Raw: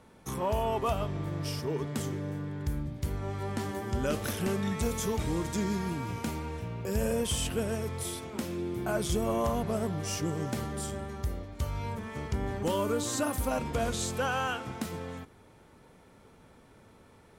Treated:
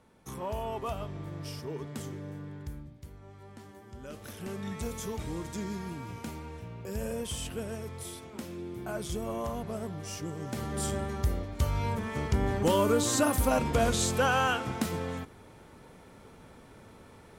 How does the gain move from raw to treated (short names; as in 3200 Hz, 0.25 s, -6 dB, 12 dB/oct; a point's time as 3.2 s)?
2.54 s -5.5 dB
3.12 s -15.5 dB
3.97 s -15.5 dB
4.7 s -5.5 dB
10.4 s -5.5 dB
10.87 s +4.5 dB